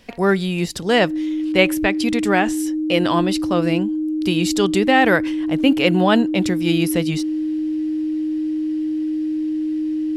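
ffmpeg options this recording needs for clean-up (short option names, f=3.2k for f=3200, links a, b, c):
-af "bandreject=f=310:w=30"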